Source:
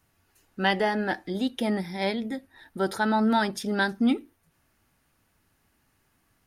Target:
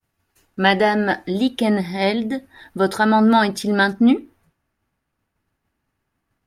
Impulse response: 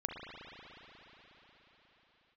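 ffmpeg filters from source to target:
-af "agate=range=0.0224:threshold=0.00112:ratio=3:detection=peak,asetnsamples=n=441:p=0,asendcmd='3.93 highshelf g -10',highshelf=f=3500:g=-2.5,volume=2.66"

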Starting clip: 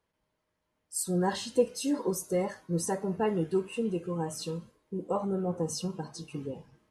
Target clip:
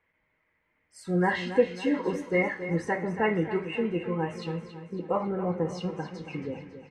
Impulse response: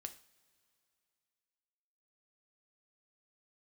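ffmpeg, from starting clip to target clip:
-filter_complex "[0:a]lowpass=f=2100:t=q:w=6.5,aecho=1:1:276|552|828|1104|1380:0.266|0.13|0.0639|0.0313|0.0153,asplit=2[s0][s1];[1:a]atrim=start_sample=2205,highshelf=f=4600:g=9.5[s2];[s1][s2]afir=irnorm=-1:irlink=0,volume=2.24[s3];[s0][s3]amix=inputs=2:normalize=0,volume=0.531"

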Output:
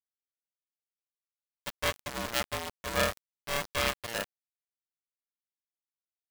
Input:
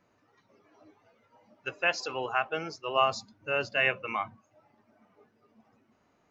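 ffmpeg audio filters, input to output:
-af "lowpass=3300,acrusher=bits=3:dc=4:mix=0:aa=0.000001,aeval=exprs='val(0)*sgn(sin(2*PI*580*n/s))':c=same"

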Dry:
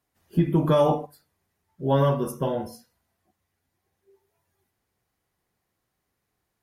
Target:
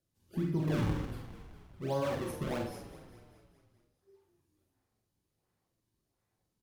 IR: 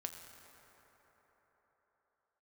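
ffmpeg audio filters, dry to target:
-filter_complex "[0:a]asplit=2[s0][s1];[s1]acompressor=threshold=0.0251:ratio=6,volume=1.26[s2];[s0][s2]amix=inputs=2:normalize=0,equalizer=f=8600:w=0.44:g=6,acrossover=split=350|2900[s3][s4][s5];[s4]acrusher=samples=38:mix=1:aa=0.000001:lfo=1:lforange=60.8:lforate=1.4[s6];[s3][s6][s5]amix=inputs=3:normalize=0,asplit=7[s7][s8][s9][s10][s11][s12][s13];[s8]adelay=205,afreqshift=-43,volume=0.2[s14];[s9]adelay=410,afreqshift=-86,volume=0.116[s15];[s10]adelay=615,afreqshift=-129,volume=0.0668[s16];[s11]adelay=820,afreqshift=-172,volume=0.0389[s17];[s12]adelay=1025,afreqshift=-215,volume=0.0226[s18];[s13]adelay=1230,afreqshift=-258,volume=0.013[s19];[s7][s14][s15][s16][s17][s18][s19]amix=inputs=7:normalize=0,alimiter=limit=0.2:level=0:latency=1:release=80,highshelf=f=4500:g=-11,asplit=2[s20][s21];[s21]adelay=46,volume=0.562[s22];[s20][s22]amix=inputs=2:normalize=0[s23];[1:a]atrim=start_sample=2205,afade=t=out:st=0.18:d=0.01,atrim=end_sample=8379,asetrate=57330,aresample=44100[s24];[s23][s24]afir=irnorm=-1:irlink=0,volume=0.531"

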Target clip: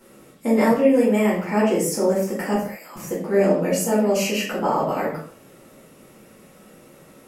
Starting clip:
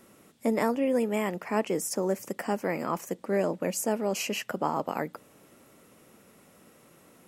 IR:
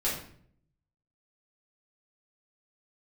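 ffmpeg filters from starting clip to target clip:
-filter_complex "[0:a]asettb=1/sr,asplit=3[s0][s1][s2];[s0]atrim=end=2.544[s3];[s1]atrim=start=2.54:end=2.96,asetpts=PTS-STARTPTS,afade=t=in:d=0.004:c=qsin,afade=t=out:st=0.416:d=0.004:c=qsin,aderivative[s4];[s2]atrim=start=2.956[s5];[s3][s4]acrossfade=d=0.004:c1=hsin:c2=qsin[s6];[s6][s5]acrossfade=d=0.004:c1=qsin:c2=hsin[s7];[1:a]atrim=start_sample=2205,afade=t=out:st=0.27:d=0.01,atrim=end_sample=12348[s8];[s7][s8]afir=irnorm=-1:irlink=0"

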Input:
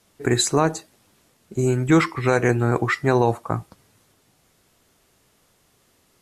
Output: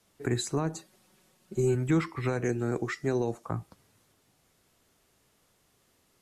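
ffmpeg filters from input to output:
-filter_complex "[0:a]asettb=1/sr,asplit=3[s0][s1][s2];[s0]atrim=end=2.444[s3];[s1]atrim=start=2.44:end=3.46,asetpts=PTS-STARTPTS,afade=t=in:d=0.004:c=qsin,afade=t=out:st=1.016:d=0.004:c=qsin,equalizer=f=100:t=o:w=0.67:g=-9,equalizer=f=400:t=o:w=0.67:g=3,equalizer=f=1000:t=o:w=0.67:g=-7,equalizer=f=6300:t=o:w=0.67:g=9[s4];[s2]atrim=start=3.456[s5];[s3][s4]acrossfade=d=0.004:c1=hsin:c2=qsin[s6];[s6][s5]acrossfade=d=0.004:c1=qsin:c2=hsin,acrossover=split=310[s7][s8];[s8]acompressor=threshold=0.0398:ratio=2.5[s9];[s7][s9]amix=inputs=2:normalize=0,asettb=1/sr,asplit=3[s10][s11][s12];[s10]atrim=end=0.744[s13];[s11]atrim=start=0.74:end=1.75,asetpts=PTS-STARTPTS,afade=t=in:d=0.004:c=qsin,afade=t=out:st=1.006:d=0.004:c=qsin,aecho=1:1:5.4:0.81,atrim=end_sample=44541[s14];[s12]atrim=start=1.746[s15];[s13][s14]acrossfade=d=0.004:c1=hsin:c2=qsin[s16];[s16][s15]acrossfade=d=0.004:c1=qsin:c2=hsin,volume=0.473"

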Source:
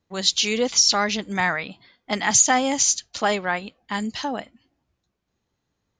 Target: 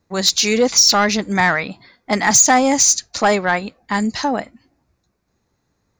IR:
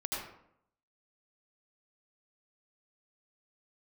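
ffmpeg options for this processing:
-af "equalizer=f=3100:t=o:w=0.35:g=-12,asoftclip=type=tanh:threshold=0.2,volume=2.66"

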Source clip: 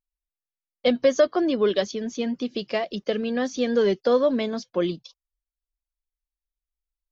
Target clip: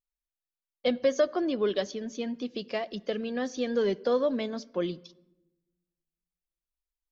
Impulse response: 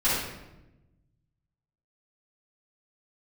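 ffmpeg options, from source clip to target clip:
-filter_complex "[0:a]asplit=2[s0][s1];[1:a]atrim=start_sample=2205,highshelf=f=5000:g=-9[s2];[s1][s2]afir=irnorm=-1:irlink=0,volume=0.0211[s3];[s0][s3]amix=inputs=2:normalize=0,volume=0.501"

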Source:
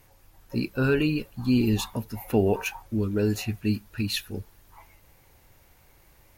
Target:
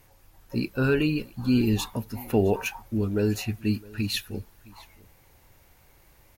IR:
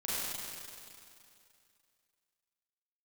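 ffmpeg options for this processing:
-af "aecho=1:1:662:0.075"

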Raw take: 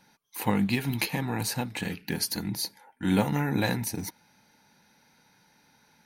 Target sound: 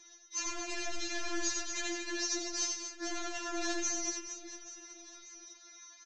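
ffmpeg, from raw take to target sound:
-filter_complex "[0:a]asplit=2[s0][s1];[s1]aeval=exprs='(mod(16.8*val(0)+1,2)-1)/16.8':c=same,volume=0.335[s2];[s0][s2]amix=inputs=2:normalize=0,lowpass=f=6100:t=q:w=7.2,alimiter=limit=0.158:level=0:latency=1:release=186,aresample=16000,asoftclip=type=tanh:threshold=0.0335,aresample=44100,aecho=1:1:90|234|464.4|833|1423:0.631|0.398|0.251|0.158|0.1,afftfilt=real='re*4*eq(mod(b,16),0)':imag='im*4*eq(mod(b,16),0)':win_size=2048:overlap=0.75"

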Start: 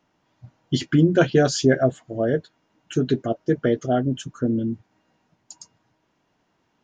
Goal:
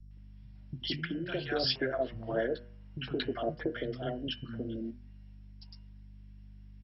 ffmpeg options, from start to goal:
-filter_complex "[0:a]aeval=exprs='val(0)+0.0126*(sin(2*PI*50*n/s)+sin(2*PI*2*50*n/s)/2+sin(2*PI*3*50*n/s)/3+sin(2*PI*4*50*n/s)/4+sin(2*PI*5*50*n/s)/5)':c=same,agate=range=0.447:threshold=0.0282:ratio=16:detection=peak,acompressor=threshold=0.0631:ratio=16,asettb=1/sr,asplit=3[s0][s1][s2];[s0]atrim=end=1.384[s3];[s1]atrim=start=1.38:end=3.52,asetpts=PTS-STARTPTS,afade=t=in:d=0.004:c=qsin,afade=t=out:st=2.136:d=0.004:c=qsin,equalizer=f=930:w=0.76:g=8.5[s4];[s2]atrim=start=3.516[s5];[s3][s4]acrossfade=d=0.004:c1=hsin:c2=qsin[s6];[s6][s5]acrossfade=d=0.004:c1=qsin:c2=hsin,acrossover=split=200|750[s7][s8][s9];[s9]adelay=110[s10];[s8]adelay=170[s11];[s7][s11][s10]amix=inputs=3:normalize=0,acrossover=split=290|3000[s12][s13][s14];[s12]acompressor=threshold=0.02:ratio=6[s15];[s15][s13][s14]amix=inputs=3:normalize=0,highshelf=f=1600:t=q:w=1.5:g=6,bandreject=f=120.5:t=h:w=4,bandreject=f=241:t=h:w=4,bandreject=f=361.5:t=h:w=4,bandreject=f=482:t=h:w=4,bandreject=f=602.5:t=h:w=4,bandreject=f=723:t=h:w=4,bandreject=f=843.5:t=h:w=4,bandreject=f=964:t=h:w=4,bandreject=f=1084.5:t=h:w=4,bandreject=f=1205:t=h:w=4,bandreject=f=1325.5:t=h:w=4,bandreject=f=1446:t=h:w=4,bandreject=f=1566.5:t=h:w=4,bandreject=f=1687:t=h:w=4,bandreject=f=1807.5:t=h:w=4,bandreject=f=1928:t=h:w=4,bandreject=f=2048.5:t=h:w=4,bandreject=f=2169:t=h:w=4,bandreject=f=2289.5:t=h:w=4,bandreject=f=2410:t=h:w=4,bandreject=f=2530.5:t=h:w=4,bandreject=f=2651:t=h:w=4,bandreject=f=2771.5:t=h:w=4,bandreject=f=2892:t=h:w=4,bandreject=f=3012.5:t=h:w=4,volume=0.631" -ar 22050 -c:a mp2 -b:a 32k

